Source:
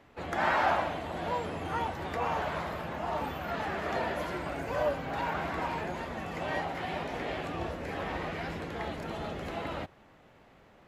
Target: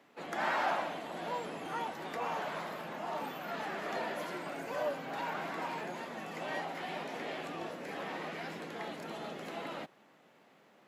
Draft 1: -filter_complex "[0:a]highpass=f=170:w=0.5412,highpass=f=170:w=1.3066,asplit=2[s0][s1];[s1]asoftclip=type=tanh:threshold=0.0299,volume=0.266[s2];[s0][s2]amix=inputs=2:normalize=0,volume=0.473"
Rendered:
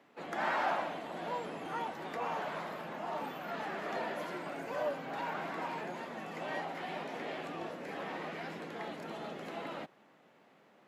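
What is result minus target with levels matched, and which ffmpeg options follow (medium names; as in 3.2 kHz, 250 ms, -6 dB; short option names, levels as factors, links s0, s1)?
8 kHz band -4.0 dB
-filter_complex "[0:a]highpass=f=170:w=0.5412,highpass=f=170:w=1.3066,highshelf=f=3800:g=5.5,asplit=2[s0][s1];[s1]asoftclip=type=tanh:threshold=0.0299,volume=0.266[s2];[s0][s2]amix=inputs=2:normalize=0,volume=0.473"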